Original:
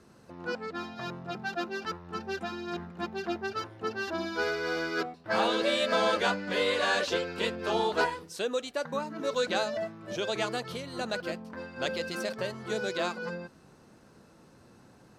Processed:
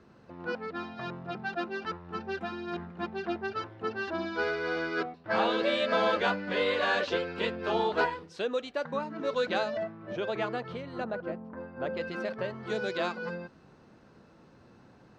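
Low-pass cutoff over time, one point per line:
3.5 kHz
from 9.83 s 2.2 kHz
from 11.04 s 1.2 kHz
from 11.97 s 2.4 kHz
from 12.63 s 4.1 kHz

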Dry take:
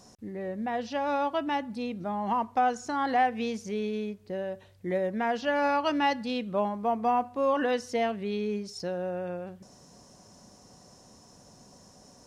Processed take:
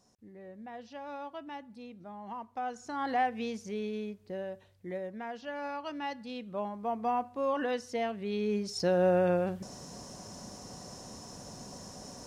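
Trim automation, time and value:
2.48 s -13.5 dB
3.08 s -4.5 dB
4.43 s -4.5 dB
5.29 s -12 dB
5.94 s -12 dB
7.04 s -5 dB
8.13 s -5 dB
9.07 s +8 dB

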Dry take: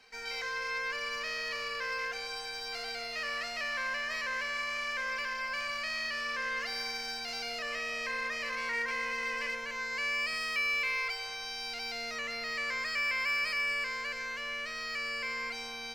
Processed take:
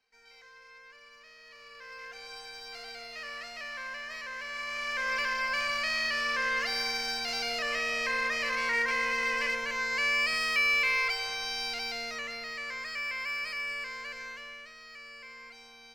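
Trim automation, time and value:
1.37 s -18 dB
2.34 s -5 dB
4.37 s -5 dB
5.17 s +5 dB
11.61 s +5 dB
12.58 s -3.5 dB
14.28 s -3.5 dB
14.76 s -11.5 dB

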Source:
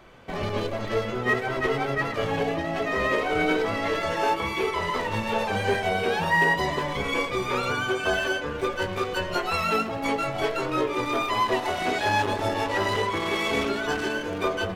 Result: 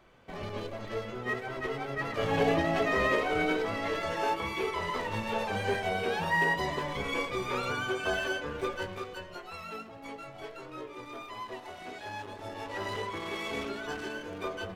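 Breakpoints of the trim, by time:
1.89 s -9.5 dB
2.52 s +1.5 dB
3.56 s -6 dB
8.69 s -6 dB
9.37 s -17 dB
12.32 s -17 dB
12.88 s -10 dB

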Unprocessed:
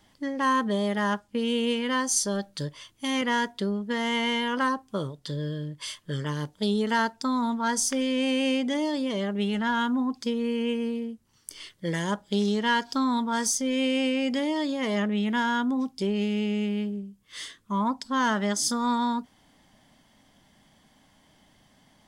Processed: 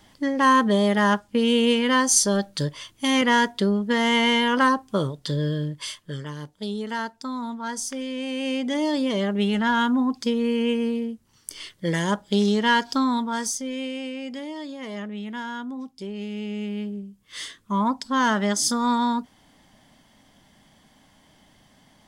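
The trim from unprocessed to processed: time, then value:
5.65 s +6.5 dB
6.31 s -4.5 dB
8.29 s -4.5 dB
8.91 s +4.5 dB
12.91 s +4.5 dB
14.00 s -7 dB
16.09 s -7 dB
17.37 s +3.5 dB

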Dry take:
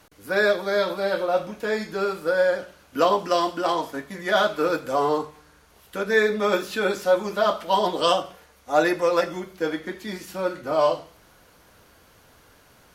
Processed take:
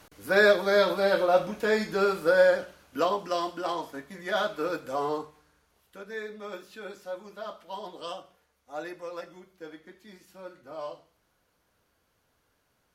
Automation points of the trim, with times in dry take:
2.45 s +0.5 dB
3.14 s -7.5 dB
5.12 s -7.5 dB
6.16 s -17.5 dB

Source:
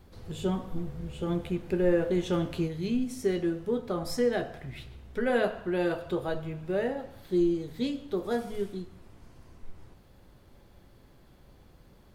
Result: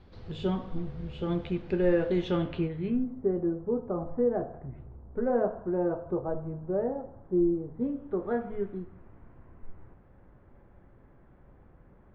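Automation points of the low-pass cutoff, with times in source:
low-pass 24 dB/octave
2.21 s 4.6 kHz
2.85 s 2.4 kHz
3.12 s 1.1 kHz
7.75 s 1.1 kHz
8.29 s 1.9 kHz

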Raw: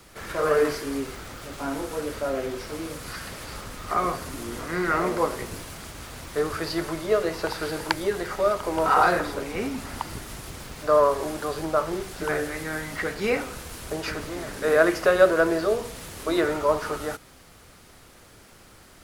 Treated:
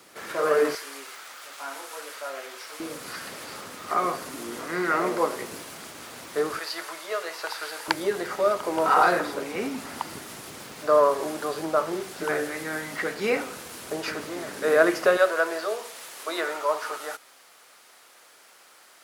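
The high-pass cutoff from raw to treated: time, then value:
250 Hz
from 0.75 s 920 Hz
from 2.80 s 230 Hz
from 6.59 s 850 Hz
from 7.88 s 200 Hz
from 15.17 s 650 Hz

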